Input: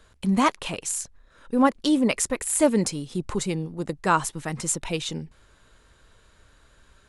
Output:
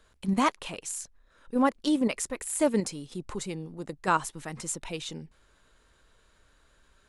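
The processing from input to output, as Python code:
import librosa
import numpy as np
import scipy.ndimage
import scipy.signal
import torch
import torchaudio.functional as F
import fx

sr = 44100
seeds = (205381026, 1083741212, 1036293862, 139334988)

p1 = fx.peak_eq(x, sr, hz=98.0, db=-5.0, octaves=1.4)
p2 = fx.level_steps(p1, sr, step_db=22)
p3 = p1 + F.gain(torch.from_numpy(p2), 1.0).numpy()
y = F.gain(torch.from_numpy(p3), -8.5).numpy()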